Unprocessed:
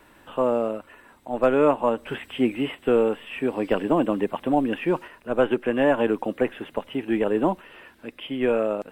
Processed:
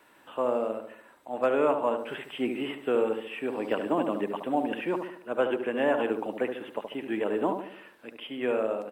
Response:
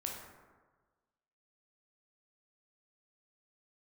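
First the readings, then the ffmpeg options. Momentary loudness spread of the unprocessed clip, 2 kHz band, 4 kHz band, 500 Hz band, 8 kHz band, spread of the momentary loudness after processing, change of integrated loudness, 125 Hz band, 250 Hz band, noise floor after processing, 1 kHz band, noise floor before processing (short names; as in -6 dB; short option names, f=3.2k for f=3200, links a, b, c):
13 LU, -4.0 dB, -4.0 dB, -5.0 dB, n/a, 13 LU, -5.5 dB, -11.0 dB, -7.0 dB, -58 dBFS, -4.0 dB, -55 dBFS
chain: -filter_complex "[0:a]highpass=f=380:p=1,asplit=2[a][b];[b]adelay=72,lowpass=f=1k:p=1,volume=-5dB,asplit=2[c][d];[d]adelay=72,lowpass=f=1k:p=1,volume=0.52,asplit=2[e][f];[f]adelay=72,lowpass=f=1k:p=1,volume=0.52,asplit=2[g][h];[h]adelay=72,lowpass=f=1k:p=1,volume=0.52,asplit=2[i][j];[j]adelay=72,lowpass=f=1k:p=1,volume=0.52,asplit=2[k][l];[l]adelay=72,lowpass=f=1k:p=1,volume=0.52,asplit=2[m][n];[n]adelay=72,lowpass=f=1k:p=1,volume=0.52[o];[c][e][g][i][k][m][o]amix=inputs=7:normalize=0[p];[a][p]amix=inputs=2:normalize=0,volume=-4dB"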